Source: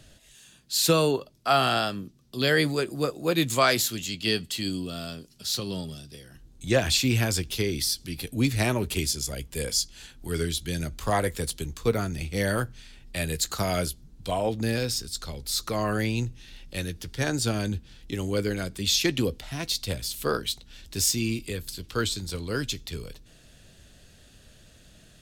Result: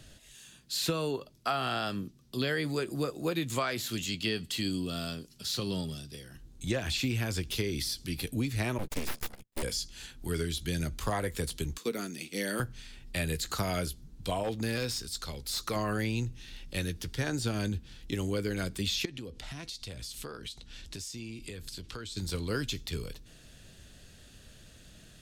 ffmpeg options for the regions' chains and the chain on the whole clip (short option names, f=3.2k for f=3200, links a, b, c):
-filter_complex "[0:a]asettb=1/sr,asplit=3[a][b][c];[a]atrim=end=8.784[d];[b]atrim=start=8.78:end=9.63,asetpts=PTS-STARTPTS,afade=t=in:d=0.004:c=qsin,afade=t=out:st=0.846:d=0.004:c=qsin,agate=range=-37dB:threshold=-32dB:ratio=16:release=100:detection=peak,aeval=exprs='abs(val(0))':c=same[e];[c]atrim=start=9.626[f];[d][e]acrossfade=d=0.004:c1=hsin:c2=qsin[g];[g][f]acrossfade=d=0.004:c1=qsin:c2=hsin,asettb=1/sr,asplit=3[h][i][j];[h]atrim=end=11.784[k];[i]atrim=start=11.78:end=12.6,asetpts=PTS-STARTPTS,afade=t=in:d=0.004:c=qsin,afade=t=out:st=0.816:d=0.004:c=qsin,highpass=f=220:w=0.5412,highpass=f=220:w=1.3066,equalizer=f=880:w=0.64:g=-9.5[l];[j]atrim=start=12.596[m];[k][l]acrossfade=d=0.004:c1=hsin:c2=qsin[n];[n][m]acrossfade=d=0.004:c1=qsin:c2=hsin,asettb=1/sr,asplit=3[o][p][q];[o]atrim=end=14.434[r];[p]atrim=start=14.43:end=15.76,asetpts=PTS-STARTPTS,afade=t=in:d=0.004:c=qsin,afade=t=out:st=1.326:d=0.004:c=qsin,lowshelf=f=420:g=-4.5,asoftclip=type=hard:threshold=-22.5dB[s];[q]atrim=start=15.756[t];[r][s]acrossfade=d=0.004:c1=hsin:c2=qsin[u];[u][t]acrossfade=d=0.004:c1=qsin:c2=hsin,asettb=1/sr,asplit=3[v][w][x];[v]atrim=end=19.054[y];[w]atrim=start=19.05:end=22.17,asetpts=PTS-STARTPTS,afade=t=in:d=0.004:c=qsin,afade=t=out:st=3.116:d=0.004:c=qsin,lowpass=9.8k,acompressor=threshold=-37dB:ratio=12:attack=3.2:release=140:knee=1:detection=peak[z];[x]atrim=start=22.166[aa];[y][z]acrossfade=d=0.004:c1=hsin:c2=qsin[ab];[ab][aa]acrossfade=d=0.004:c1=qsin:c2=hsin,acrossover=split=3400[ac][ad];[ad]acompressor=threshold=-33dB:ratio=4:attack=1:release=60[ae];[ac][ae]amix=inputs=2:normalize=0,equalizer=f=640:w=2:g=-2.5,acompressor=threshold=-27dB:ratio=12"